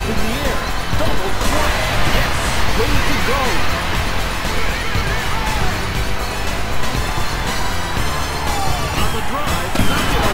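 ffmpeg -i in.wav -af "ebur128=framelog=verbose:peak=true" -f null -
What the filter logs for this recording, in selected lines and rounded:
Integrated loudness:
  I:         -19.2 LUFS
  Threshold: -29.2 LUFS
Loudness range:
  LRA:         2.9 LU
  Threshold: -39.3 LUFS
  LRA low:   -20.7 LUFS
  LRA high:  -17.8 LUFS
True peak:
  Peak:       -2.2 dBFS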